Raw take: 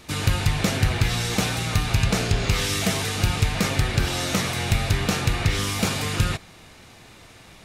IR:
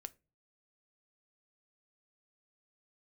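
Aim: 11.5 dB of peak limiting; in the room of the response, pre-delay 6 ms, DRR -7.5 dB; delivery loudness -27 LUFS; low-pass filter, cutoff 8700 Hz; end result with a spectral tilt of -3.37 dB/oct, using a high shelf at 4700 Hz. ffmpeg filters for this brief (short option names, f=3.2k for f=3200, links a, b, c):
-filter_complex "[0:a]lowpass=8.7k,highshelf=f=4.7k:g=5.5,alimiter=limit=-18.5dB:level=0:latency=1,asplit=2[a][b];[1:a]atrim=start_sample=2205,adelay=6[c];[b][c]afir=irnorm=-1:irlink=0,volume=12.5dB[d];[a][d]amix=inputs=2:normalize=0,volume=-7.5dB"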